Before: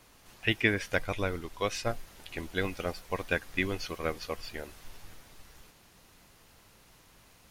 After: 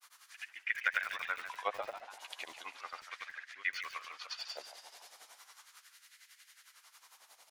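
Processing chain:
first-order pre-emphasis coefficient 0.8
notch filter 2,600 Hz, Q 19
treble cut that deepens with the level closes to 1,300 Hz, closed at −36.5 dBFS
high-shelf EQ 7,900 Hz −8.5 dB
auto-filter high-pass sine 0.36 Hz 620–1,800 Hz
granular cloud 100 ms, grains 11 per second, spray 100 ms, pitch spread up and down by 0 semitones
echo with shifted repeats 143 ms, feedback 59%, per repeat +110 Hz, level −10.5 dB
feedback echo at a low word length 82 ms, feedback 80%, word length 8 bits, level −13.5 dB
level +10.5 dB

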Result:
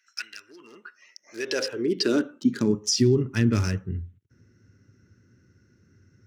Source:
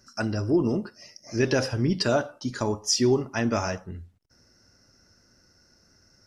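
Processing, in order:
adaptive Wiener filter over 9 samples
drawn EQ curve 410 Hz 0 dB, 700 Hz −21 dB, 1,500 Hz −4 dB, 4,700 Hz +3 dB, 7,100 Hz 0 dB
brickwall limiter −17 dBFS, peak gain reduction 7 dB
high-pass filter sweep 2,200 Hz → 100 Hz, 0:00.38–0:03.16
level +3 dB

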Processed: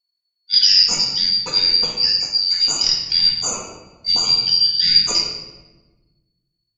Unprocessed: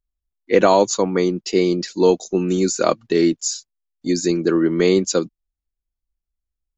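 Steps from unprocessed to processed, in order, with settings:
band-splitting scrambler in four parts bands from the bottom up 4321
rectangular room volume 720 cubic metres, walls mixed, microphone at 1.9 metres
level −2.5 dB

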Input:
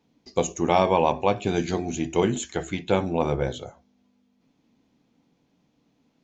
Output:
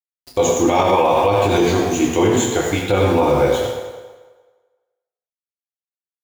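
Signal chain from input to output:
parametric band 160 Hz −11 dB 0.33 octaves
centre clipping without the shift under −39.5 dBFS
convolution reverb RT60 1.4 s, pre-delay 5 ms, DRR −4 dB
boost into a limiter +11.5 dB
level −5 dB

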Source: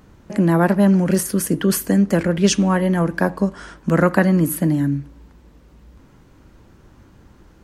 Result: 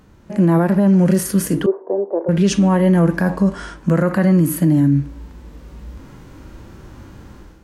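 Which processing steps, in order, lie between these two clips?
0:01.66–0:02.29: elliptic band-pass filter 380–940 Hz, stop band 80 dB
harmonic and percussive parts rebalanced percussive −11 dB
automatic gain control gain up to 10 dB
boost into a limiter +9 dB
level −6 dB

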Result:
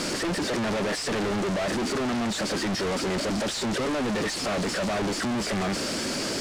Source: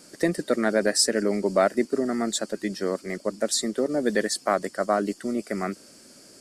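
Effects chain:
sign of each sample alone
high-frequency loss of the air 79 metres

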